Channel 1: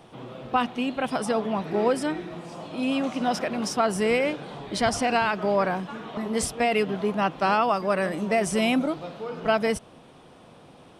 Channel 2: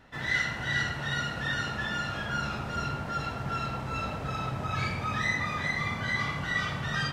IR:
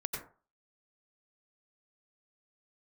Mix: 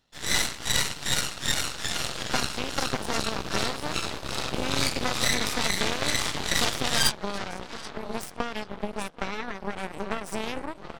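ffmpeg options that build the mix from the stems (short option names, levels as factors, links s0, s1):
-filter_complex "[0:a]acompressor=threshold=0.0251:ratio=5,adelay=1800,volume=1.33,asplit=2[s0][s1];[s1]volume=0.355[s2];[1:a]highshelf=f=2800:t=q:w=1.5:g=11,volume=1.06,asplit=2[s3][s4];[s4]volume=0.188[s5];[s2][s5]amix=inputs=2:normalize=0,aecho=0:1:783|1566|2349|3132|3915:1|0.32|0.102|0.0328|0.0105[s6];[s0][s3][s6]amix=inputs=3:normalize=0,aeval=exprs='0.282*(cos(1*acos(clip(val(0)/0.282,-1,1)))-cos(1*PI/2))+0.00794*(cos(3*acos(clip(val(0)/0.282,-1,1)))-cos(3*PI/2))+0.0891*(cos(4*acos(clip(val(0)/0.282,-1,1)))-cos(4*PI/2))+0.0316*(cos(7*acos(clip(val(0)/0.282,-1,1)))-cos(7*PI/2))+0.0178*(cos(8*acos(clip(val(0)/0.282,-1,1)))-cos(8*PI/2))':c=same"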